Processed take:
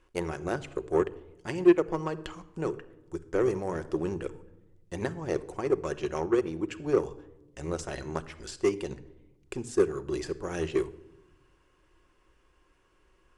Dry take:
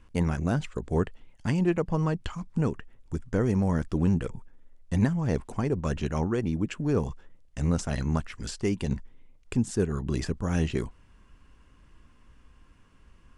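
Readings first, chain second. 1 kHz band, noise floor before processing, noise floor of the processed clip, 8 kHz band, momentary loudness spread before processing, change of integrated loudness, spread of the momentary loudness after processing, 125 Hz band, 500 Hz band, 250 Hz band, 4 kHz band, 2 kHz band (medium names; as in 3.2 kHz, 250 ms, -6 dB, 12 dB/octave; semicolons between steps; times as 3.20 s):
0.0 dB, -58 dBFS, -66 dBFS, -3.0 dB, 9 LU, -2.0 dB, 14 LU, -12.0 dB, +4.0 dB, -3.5 dB, -2.5 dB, -1.0 dB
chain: resonant low shelf 280 Hz -7.5 dB, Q 3; simulated room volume 3900 m³, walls furnished, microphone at 1 m; Chebyshev shaper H 7 -25 dB, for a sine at -8.5 dBFS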